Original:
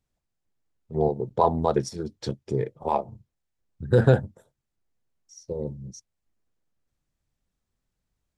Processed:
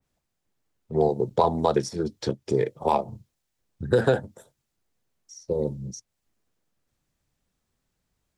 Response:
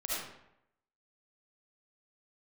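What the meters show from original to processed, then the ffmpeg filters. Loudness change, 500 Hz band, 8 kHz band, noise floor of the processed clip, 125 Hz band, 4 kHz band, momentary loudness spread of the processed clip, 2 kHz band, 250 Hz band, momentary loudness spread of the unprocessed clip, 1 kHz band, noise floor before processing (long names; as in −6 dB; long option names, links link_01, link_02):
0.0 dB, +1.5 dB, +3.0 dB, −80 dBFS, −5.0 dB, +3.5 dB, 17 LU, +1.5 dB, +0.5 dB, 20 LU, +0.5 dB, −82 dBFS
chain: -filter_complex "[0:a]lowshelf=frequency=79:gain=-7.5,acrossover=split=260|2200[link_01][link_02][link_03];[link_01]acompressor=threshold=-36dB:ratio=4[link_04];[link_02]acompressor=threshold=-24dB:ratio=4[link_05];[link_03]acompressor=threshold=-50dB:ratio=4[link_06];[link_04][link_05][link_06]amix=inputs=3:normalize=0,adynamicequalizer=threshold=0.00251:dfrequency=2700:dqfactor=0.7:tfrequency=2700:tqfactor=0.7:attack=5:release=100:ratio=0.375:range=3.5:mode=boostabove:tftype=highshelf,volume=6dB"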